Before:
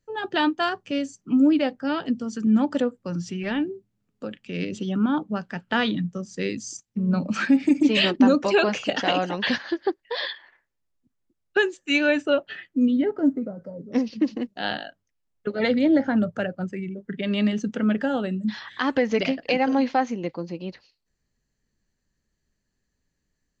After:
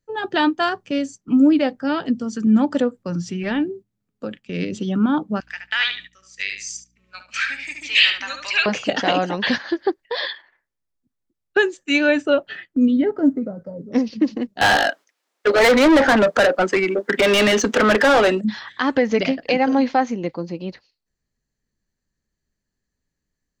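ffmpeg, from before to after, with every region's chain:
ffmpeg -i in.wav -filter_complex "[0:a]asettb=1/sr,asplit=3[link_01][link_02][link_03];[link_01]atrim=end=5.404[link_04];[link_02]atrim=start=5.4:end=8.66,asetpts=PTS-STARTPTS,afade=type=in:duration=0.004:curve=qsin,afade=type=out:start_time=3.256:duration=0.004:curve=qsin,highpass=frequency=2200:width_type=q:width=2.2,aeval=exprs='val(0)+0.000891*(sin(2*PI*60*n/s)+sin(2*PI*2*60*n/s)/2+sin(2*PI*3*60*n/s)/3+sin(2*PI*4*60*n/s)/4+sin(2*PI*5*60*n/s)/5)':channel_layout=same,asplit=2[link_05][link_06];[link_06]adelay=72,lowpass=frequency=3500:poles=1,volume=-5.5dB,asplit=2[link_07][link_08];[link_08]adelay=72,lowpass=frequency=3500:poles=1,volume=0.22,asplit=2[link_09][link_10];[link_10]adelay=72,lowpass=frequency=3500:poles=1,volume=0.22[link_11];[link_05][link_07][link_09][link_11]amix=inputs=4:normalize=0,atrim=end_sample=143766[link_12];[link_03]atrim=start=8.656[link_13];[link_04][link_12]acrossfade=duration=0.004:curve1=hsin:curve2=qsin[link_14];[link_14][link_13]acrossfade=duration=0.004:curve1=qsin:curve2=hsin,asettb=1/sr,asplit=3[link_15][link_16][link_17];[link_15]atrim=end=14.614[link_18];[link_16]atrim=start=14.61:end=18.41,asetpts=PTS-STARTPTS,afade=type=in:duration=0.004:curve=qsin,afade=type=out:start_time=3.796:duration=0.004:curve=qsin,highpass=frequency=290:width=0.5412,highpass=frequency=290:width=1.3066,asplit=2[link_19][link_20];[link_20]highpass=frequency=720:poles=1,volume=29dB,asoftclip=type=tanh:threshold=-10.5dB[link_21];[link_19][link_21]amix=inputs=2:normalize=0,lowpass=frequency=4300:poles=1,volume=-6dB[link_22];[link_17]atrim=start=18.406[link_23];[link_18][link_22]acrossfade=duration=0.004:curve1=hsin:curve2=qsin[link_24];[link_24][link_23]acrossfade=duration=0.004:curve1=qsin:curve2=hsin,agate=range=-7dB:threshold=-41dB:ratio=16:detection=peak,equalizer=frequency=2800:width=3.7:gain=-2.5,volume=4dB" out.wav

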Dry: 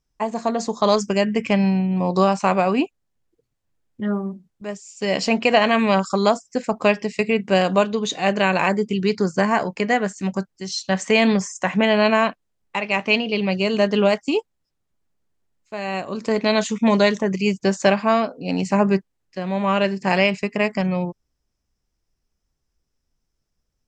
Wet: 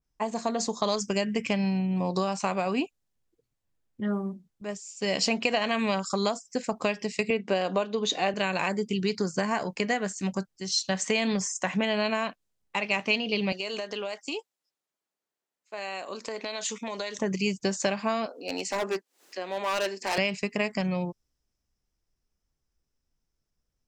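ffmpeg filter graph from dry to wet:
ffmpeg -i in.wav -filter_complex "[0:a]asettb=1/sr,asplit=3[link_01][link_02][link_03];[link_01]atrim=end=7.304[link_04];[link_02]atrim=start=7.3:end=8.34,asetpts=PTS-STARTPTS,afade=type=in:duration=0.004:curve=qsin,afade=type=out:start_time=1.036:duration=0.004:curve=qsin,highpass=190,lowpass=5900,equalizer=frequency=550:width_type=o:width=2.8:gain=5[link_05];[link_03]atrim=start=8.336[link_06];[link_04][link_05]acrossfade=duration=0.004:curve1=hsin:curve2=qsin[link_07];[link_07][link_06]acrossfade=duration=0.004:curve1=qsin:curve2=hsin,asettb=1/sr,asplit=3[link_08][link_09][link_10];[link_08]atrim=end=13.524[link_11];[link_09]atrim=start=13.52:end=17.19,asetpts=PTS-STARTPTS,afade=type=in:duration=0.004:curve=qsin,afade=type=out:start_time=3.666:duration=0.004:curve=qsin,highpass=420,acompressor=threshold=-25dB:ratio=8:attack=3.2:release=140:knee=1:detection=peak[link_12];[link_10]atrim=start=17.186[link_13];[link_11][link_12]acrossfade=duration=0.004:curve1=hsin:curve2=qsin[link_14];[link_14][link_13]acrossfade=duration=0.004:curve1=qsin:curve2=hsin,asettb=1/sr,asplit=3[link_15][link_16][link_17];[link_15]atrim=end=18.264[link_18];[link_16]atrim=start=18.26:end=20.18,asetpts=PTS-STARTPTS,afade=type=in:duration=0.004:curve=qsin,afade=type=out:start_time=1.916:duration=0.004:curve=qsin,highpass=frequency=320:width=0.5412,highpass=frequency=320:width=1.3066,acompressor=mode=upward:threshold=-32dB:ratio=2.5:attack=3.2:release=140:knee=2.83:detection=peak,volume=19dB,asoftclip=hard,volume=-19dB[link_19];[link_17]atrim=start=20.176[link_20];[link_18][link_19]acrossfade=duration=0.004:curve1=hsin:curve2=qsin[link_21];[link_21][link_20]acrossfade=duration=0.004:curve1=qsin:curve2=hsin,acompressor=threshold=-18dB:ratio=6,adynamicequalizer=threshold=0.01:dfrequency=2800:dqfactor=0.7:tfrequency=2800:tqfactor=0.7:attack=5:release=100:ratio=0.375:range=3.5:mode=boostabove:tftype=highshelf,volume=-5dB" out.wav

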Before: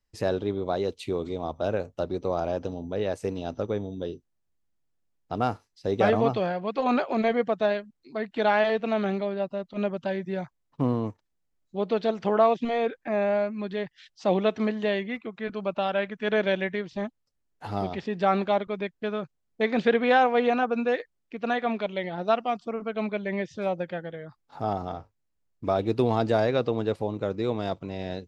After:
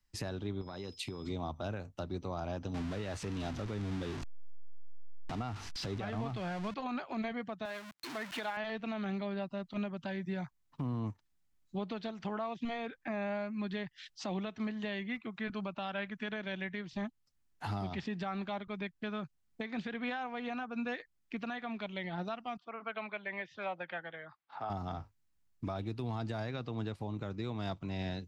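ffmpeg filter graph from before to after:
ffmpeg -i in.wav -filter_complex "[0:a]asettb=1/sr,asplit=3[link_01][link_02][link_03];[link_01]atrim=end=0.614[link_04];[link_02]atrim=start=0.61:end=1.28,asetpts=PTS-STARTPTS,afade=type=in:duration=0.004:curve=qsin,afade=type=out:start_time=0.666:duration=0.004:curve=qsin,bandreject=frequency=690:width=9,acompressor=threshold=-33dB:ratio=10:attack=3.2:release=140:knee=1:detection=peak,aeval=exprs='val(0)+0.00112*sin(2*PI*5100*n/s)':channel_layout=same[link_05];[link_03]atrim=start=1.276[link_06];[link_04][link_05]acrossfade=duration=0.004:curve1=hsin:curve2=qsin[link_07];[link_07][link_06]acrossfade=duration=0.004:curve1=qsin:curve2=hsin,asettb=1/sr,asplit=3[link_08][link_09][link_10];[link_08]atrim=end=2.744[link_11];[link_09]atrim=start=2.74:end=6.74,asetpts=PTS-STARTPTS,afade=type=in:duration=0.004:curve=qsin,afade=type=out:start_time=3.996:duration=0.004:curve=qsin,aeval=exprs='val(0)+0.5*0.0237*sgn(val(0))':channel_layout=same,lowpass=5500[link_12];[link_10]atrim=start=6.736[link_13];[link_11][link_12]acrossfade=duration=0.004:curve1=hsin:curve2=qsin[link_14];[link_14][link_13]acrossfade=duration=0.004:curve1=qsin:curve2=hsin,asettb=1/sr,asplit=3[link_15][link_16][link_17];[link_15]atrim=end=7.654[link_18];[link_16]atrim=start=7.65:end=8.57,asetpts=PTS-STARTPTS,afade=type=in:duration=0.004:curve=qsin,afade=type=out:start_time=0.916:duration=0.004:curve=qsin,aeval=exprs='val(0)+0.5*0.0266*sgn(val(0))':channel_layout=same,highpass=frequency=720:poles=1,aemphasis=mode=reproduction:type=cd[link_19];[link_17]atrim=start=8.566[link_20];[link_18][link_19]acrossfade=duration=0.004:curve1=hsin:curve2=qsin[link_21];[link_21][link_20]acrossfade=duration=0.004:curve1=qsin:curve2=hsin,asettb=1/sr,asplit=3[link_22][link_23][link_24];[link_22]atrim=end=22.574[link_25];[link_23]atrim=start=22.57:end=24.7,asetpts=PTS-STARTPTS,afade=type=in:duration=0.004:curve=qsin,afade=type=out:start_time=2.126:duration=0.004:curve=qsin,highpass=76,acrossover=split=480 3700:gain=0.141 1 0.0708[link_26][link_27][link_28];[link_26][link_27][link_28]amix=inputs=3:normalize=0[link_29];[link_24]atrim=start=24.696[link_30];[link_25][link_29]acrossfade=duration=0.004:curve1=hsin:curve2=qsin[link_31];[link_31][link_30]acrossfade=duration=0.004:curve1=qsin:curve2=hsin,equalizer=frequency=490:width=1.5:gain=-11,acrossover=split=130[link_32][link_33];[link_33]acompressor=threshold=-41dB:ratio=1.5[link_34];[link_32][link_34]amix=inputs=2:normalize=0,alimiter=level_in=6.5dB:limit=-24dB:level=0:latency=1:release=420,volume=-6.5dB,volume=2.5dB" out.wav

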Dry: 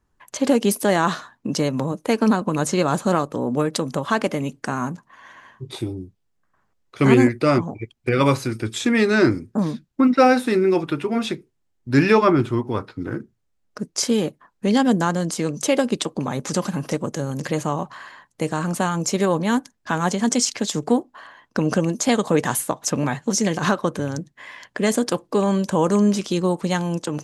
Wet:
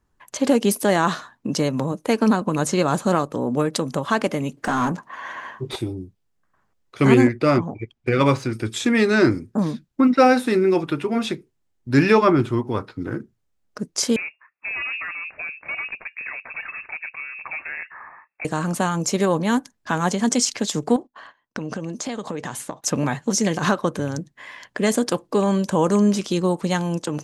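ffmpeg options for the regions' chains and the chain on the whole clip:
ffmpeg -i in.wav -filter_complex "[0:a]asettb=1/sr,asplit=3[link_01][link_02][link_03];[link_01]atrim=end=4.574[link_04];[link_02]atrim=start=4.57:end=5.76,asetpts=PTS-STARTPTS,afade=type=in:duration=0.004:curve=qsin,afade=type=out:start_time=1.186:duration=0.004:curve=qsin,highshelf=frequency=5900:gain=8.5,asplit=2[link_05][link_06];[link_06]highpass=frequency=720:poles=1,volume=23dB,asoftclip=type=tanh:threshold=-9.5dB[link_07];[link_05][link_07]amix=inputs=2:normalize=0,lowpass=frequency=1000:poles=1,volume=-6dB[link_08];[link_03]atrim=start=5.756[link_09];[link_04][link_08]acrossfade=duration=0.004:curve1=hsin:curve2=qsin[link_10];[link_10][link_09]acrossfade=duration=0.004:curve1=qsin:curve2=hsin,asettb=1/sr,asplit=3[link_11][link_12][link_13];[link_11]atrim=end=7.214[link_14];[link_12]atrim=start=7.21:end=8.53,asetpts=PTS-STARTPTS,afade=type=in:duration=0.004:curve=qsin,afade=type=out:start_time=1.316:duration=0.004:curve=qsin,bandreject=frequency=4100:width=19,adynamicsmooth=sensitivity=3:basefreq=6000[link_15];[link_13]atrim=start=8.526[link_16];[link_14][link_15]acrossfade=duration=0.004:curve1=hsin:curve2=qsin[link_17];[link_17][link_16]acrossfade=duration=0.004:curve1=qsin:curve2=hsin,asettb=1/sr,asplit=3[link_18][link_19][link_20];[link_18]atrim=end=14.164[link_21];[link_19]atrim=start=14.16:end=18.45,asetpts=PTS-STARTPTS,afade=type=in:duration=0.004:curve=qsin,afade=type=out:start_time=4.286:duration=0.004:curve=qsin,highpass=frequency=580:poles=1,asoftclip=type=hard:threshold=-25.5dB,lowpass=frequency=2400:width_type=q:width=0.5098,lowpass=frequency=2400:width_type=q:width=0.6013,lowpass=frequency=2400:width_type=q:width=0.9,lowpass=frequency=2400:width_type=q:width=2.563,afreqshift=-2800[link_22];[link_20]atrim=start=18.446[link_23];[link_21][link_22]acrossfade=duration=0.004:curve1=hsin:curve2=qsin[link_24];[link_24][link_23]acrossfade=duration=0.004:curve1=qsin:curve2=hsin,asettb=1/sr,asplit=3[link_25][link_26][link_27];[link_25]atrim=end=20.964[link_28];[link_26]atrim=start=20.96:end=22.84,asetpts=PTS-STARTPTS,afade=type=in:duration=0.004:curve=qsin,afade=type=out:start_time=1.876:duration=0.004:curve=qsin,lowpass=7200,agate=range=-19dB:threshold=-44dB:ratio=16:release=100:detection=peak,acompressor=threshold=-25dB:ratio=6:attack=3.2:release=140:knee=1:detection=peak[link_29];[link_27]atrim=start=22.836[link_30];[link_28][link_29]acrossfade=duration=0.004:curve1=hsin:curve2=qsin[link_31];[link_31][link_30]acrossfade=duration=0.004:curve1=qsin:curve2=hsin" out.wav

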